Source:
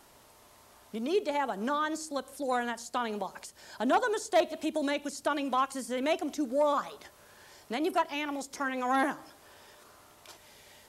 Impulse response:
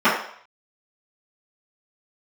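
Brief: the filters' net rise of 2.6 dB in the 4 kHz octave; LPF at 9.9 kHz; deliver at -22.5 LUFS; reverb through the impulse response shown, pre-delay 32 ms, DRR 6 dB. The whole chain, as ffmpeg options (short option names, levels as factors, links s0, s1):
-filter_complex "[0:a]lowpass=9900,equalizer=f=4000:t=o:g=3.5,asplit=2[s0][s1];[1:a]atrim=start_sample=2205,adelay=32[s2];[s1][s2]afir=irnorm=-1:irlink=0,volume=0.0335[s3];[s0][s3]amix=inputs=2:normalize=0,volume=2.37"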